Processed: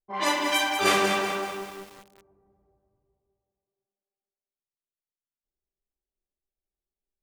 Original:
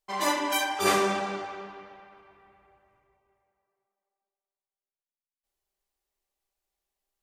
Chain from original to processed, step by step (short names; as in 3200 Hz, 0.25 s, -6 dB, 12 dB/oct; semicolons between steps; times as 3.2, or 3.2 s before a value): low-pass opened by the level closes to 360 Hz, open at -22.5 dBFS; dynamic EQ 2800 Hz, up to +5 dB, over -42 dBFS, Q 1; lo-fi delay 0.193 s, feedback 55%, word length 7-bit, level -6.5 dB